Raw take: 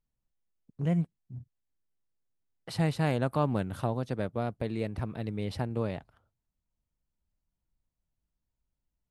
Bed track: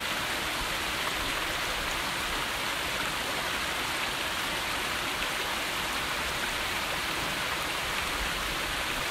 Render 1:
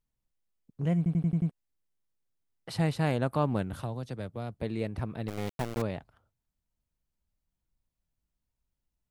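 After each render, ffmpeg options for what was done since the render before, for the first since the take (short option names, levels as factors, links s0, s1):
-filter_complex "[0:a]asettb=1/sr,asplit=3[s0][s1][s2];[s0]atrim=end=3.734[s3];[s1]atrim=start=3.73:end=4.63,asetpts=PTS-STARTPTS,afade=t=in:d=0.004:c=qsin,afade=t=out:st=0.896:d=0.004:c=qsin,acrossover=split=120|3000[s4][s5][s6];[s5]acompressor=threshold=0.00501:ratio=1.5:attack=3.2:release=140:knee=2.83:detection=peak[s7];[s4][s7][s6]amix=inputs=3:normalize=0[s8];[s2]atrim=start=4.626[s9];[s3][s8]acrossfade=d=0.004:c1=hsin:c2=qsin[s10];[s10][s9]acrossfade=d=0.004:c1=qsin:c2=hsin,asettb=1/sr,asplit=3[s11][s12][s13];[s11]atrim=end=5.284[s14];[s12]atrim=start=5.28:end=5.82,asetpts=PTS-STARTPTS,afade=t=in:d=0.004:c=qsin,afade=t=out:st=0.536:d=0.004:c=qsin,aeval=exprs='val(0)*gte(abs(val(0)),0.0266)':c=same[s15];[s13]atrim=start=5.816[s16];[s14][s15]acrossfade=d=0.004:c1=hsin:c2=qsin[s17];[s17][s16]acrossfade=d=0.004:c1=qsin:c2=hsin,asplit=7[s18][s19][s20][s21][s22][s23][s24];[s18]atrim=end=1.062[s25];[s19]atrim=start=0.968:end=1.062[s26];[s20]atrim=start=0.968:end=1.062[s27];[s21]atrim=start=0.968:end=1.062[s28];[s22]atrim=start=0.968:end=1.062[s29];[s23]atrim=start=0.968:end=1.062[s30];[s24]atrim=start=1.508[s31];[s25][s26]acrossfade=d=0.004:c1=hsin:c2=hsin[s32];[s32][s27]acrossfade=d=0.004:c1=hsin:c2=hsin[s33];[s33][s28]acrossfade=d=0.004:c1=hsin:c2=hsin[s34];[s34][s29]acrossfade=d=0.004:c1=hsin:c2=hsin[s35];[s35][s30]acrossfade=d=0.004:c1=hsin:c2=hsin[s36];[s36][s31]acrossfade=d=0.004:c1=hsin:c2=hsin"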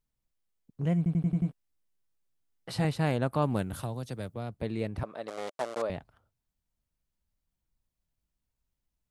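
-filter_complex "[0:a]asettb=1/sr,asplit=3[s0][s1][s2];[s0]atrim=end=1.244[s3];[s1]atrim=start=1.24:end=2.85,asetpts=PTS-STARTPTS,afade=t=in:d=0.004:c=qsin,afade=t=out:st=1.606:d=0.004:c=qsin,asplit=2[s4][s5];[s5]adelay=16,volume=0.501[s6];[s4][s6]amix=inputs=2:normalize=0,atrim=end_sample=71001[s7];[s2]atrim=start=2.846[s8];[s3][s7]acrossfade=d=0.004:c1=hsin:c2=qsin[s9];[s9][s8]acrossfade=d=0.004:c1=qsin:c2=hsin,asettb=1/sr,asplit=3[s10][s11][s12];[s10]atrim=end=3.424[s13];[s11]atrim=start=3.42:end=4.34,asetpts=PTS-STARTPTS,afade=t=in:d=0.004:c=qsin,afade=t=out:st=0.916:d=0.004:c=qsin,highshelf=f=7000:g=12[s14];[s12]atrim=start=4.336[s15];[s13][s14]acrossfade=d=0.004:c1=hsin:c2=qsin[s16];[s16][s15]acrossfade=d=0.004:c1=qsin:c2=hsin,asettb=1/sr,asplit=3[s17][s18][s19];[s17]atrim=end=5.034[s20];[s18]atrim=start=5.03:end=5.9,asetpts=PTS-STARTPTS,afade=t=in:d=0.004:c=qsin,afade=t=out:st=0.866:d=0.004:c=qsin,highpass=430,equalizer=f=590:t=q:w=4:g=9,equalizer=f=1200:t=q:w=4:g=5,equalizer=f=2500:t=q:w=4:g=-4,lowpass=f=10000:w=0.5412,lowpass=f=10000:w=1.3066[s21];[s19]atrim=start=5.896[s22];[s20][s21]acrossfade=d=0.004:c1=hsin:c2=qsin[s23];[s23][s22]acrossfade=d=0.004:c1=qsin:c2=hsin"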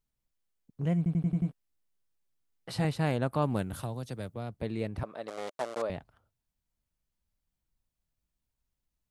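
-af "volume=0.891"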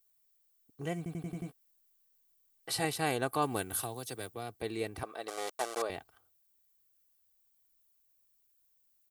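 -af "aemphasis=mode=production:type=bsi,aecho=1:1:2.6:0.53"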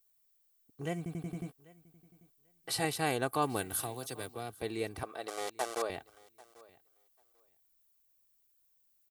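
-af "aecho=1:1:791|1582:0.0708|0.0113"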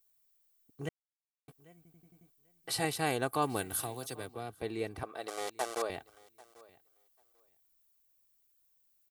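-filter_complex "[0:a]asettb=1/sr,asplit=3[s0][s1][s2];[s0]atrim=end=4.154[s3];[s1]atrim=start=4.15:end=5.16,asetpts=PTS-STARTPTS,afade=t=in:d=0.004:c=qsin,afade=t=out:st=1.006:d=0.004:c=qsin,highshelf=f=3900:g=-7[s4];[s2]atrim=start=5.156[s5];[s3][s4]acrossfade=d=0.004:c1=hsin:c2=qsin[s6];[s6][s5]acrossfade=d=0.004:c1=qsin:c2=hsin,asplit=3[s7][s8][s9];[s7]atrim=end=0.89,asetpts=PTS-STARTPTS,afade=t=out:st=0.886:d=0.004:c=hsin[s10];[s8]atrim=start=0.89:end=1.48,asetpts=PTS-STARTPTS,volume=0[s11];[s9]atrim=start=1.48,asetpts=PTS-STARTPTS,afade=t=in:d=0.004:c=hsin[s12];[s10][s11][s12]concat=n=3:v=0:a=1"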